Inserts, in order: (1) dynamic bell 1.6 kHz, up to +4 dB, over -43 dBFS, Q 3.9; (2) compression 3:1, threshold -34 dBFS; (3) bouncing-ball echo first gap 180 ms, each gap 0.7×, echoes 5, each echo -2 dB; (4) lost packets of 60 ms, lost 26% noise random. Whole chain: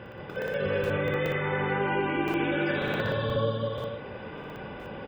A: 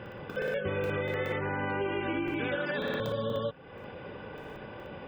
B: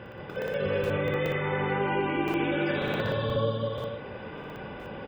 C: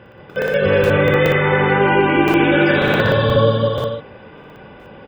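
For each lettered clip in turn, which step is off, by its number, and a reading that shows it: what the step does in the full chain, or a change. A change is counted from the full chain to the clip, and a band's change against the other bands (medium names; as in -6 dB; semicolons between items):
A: 3, loudness change -4.0 LU; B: 1, 2 kHz band -2.0 dB; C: 2, mean gain reduction 8.5 dB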